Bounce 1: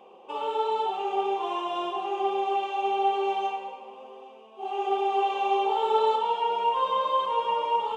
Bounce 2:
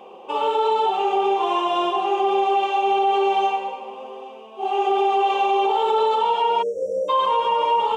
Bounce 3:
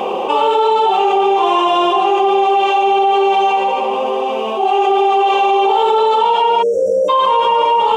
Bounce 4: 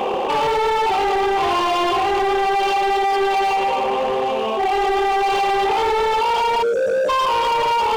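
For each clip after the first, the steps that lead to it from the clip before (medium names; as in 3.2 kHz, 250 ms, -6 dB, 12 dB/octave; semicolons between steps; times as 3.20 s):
spectral selection erased 6.62–7.09 s, 680–5300 Hz; peak limiter -21 dBFS, peak gain reduction 8 dB; trim +9 dB
level flattener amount 70%; trim +5 dB
hard clipper -14.5 dBFS, distortion -10 dB; trim -1.5 dB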